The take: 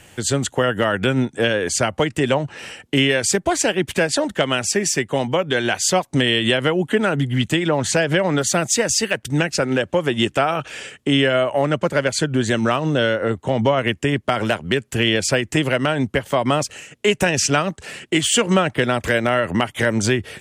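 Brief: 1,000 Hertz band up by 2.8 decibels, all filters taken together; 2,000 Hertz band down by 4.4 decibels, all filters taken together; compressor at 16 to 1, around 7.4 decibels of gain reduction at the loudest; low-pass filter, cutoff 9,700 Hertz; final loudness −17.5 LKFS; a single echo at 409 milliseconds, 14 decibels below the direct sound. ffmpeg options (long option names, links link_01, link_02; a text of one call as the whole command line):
ffmpeg -i in.wav -af "lowpass=9700,equalizer=frequency=1000:width_type=o:gain=6.5,equalizer=frequency=2000:width_type=o:gain=-8.5,acompressor=threshold=-19dB:ratio=16,aecho=1:1:409:0.2,volume=7dB" out.wav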